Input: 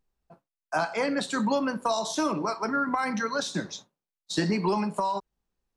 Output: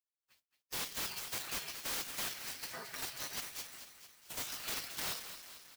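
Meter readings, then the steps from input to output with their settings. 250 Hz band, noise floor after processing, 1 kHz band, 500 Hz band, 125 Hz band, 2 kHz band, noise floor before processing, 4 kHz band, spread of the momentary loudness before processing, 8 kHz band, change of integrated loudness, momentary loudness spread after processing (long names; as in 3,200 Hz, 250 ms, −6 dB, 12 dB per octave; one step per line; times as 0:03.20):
−28.0 dB, below −85 dBFS, −20.5 dB, −23.5 dB, −21.0 dB, −11.5 dB, below −85 dBFS, −4.5 dB, 6 LU, −2.0 dB, −11.5 dB, 10 LU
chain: meter weighting curve A
gate on every frequency bin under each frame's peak −30 dB weak
high-shelf EQ 2,700 Hz +12 dB
comb filter 7.4 ms, depth 36%
in parallel at +0.5 dB: output level in coarse steps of 21 dB
on the sum: wrap-around overflow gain 32.5 dB
feedback echo with a high-pass in the loop 222 ms, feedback 58%, high-pass 630 Hz, level −9.5 dB
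converter with an unsteady clock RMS 0.029 ms
level +1.5 dB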